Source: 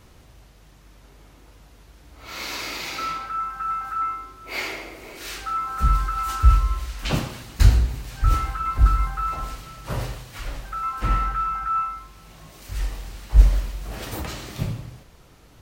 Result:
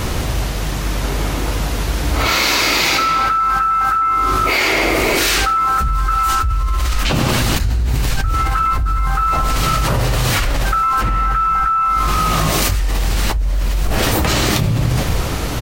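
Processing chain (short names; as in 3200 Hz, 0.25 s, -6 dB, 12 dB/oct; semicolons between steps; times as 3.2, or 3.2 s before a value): frequency-shifting echo 0.476 s, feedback 35%, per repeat -53 Hz, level -24 dB; fast leveller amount 100%; gain -9.5 dB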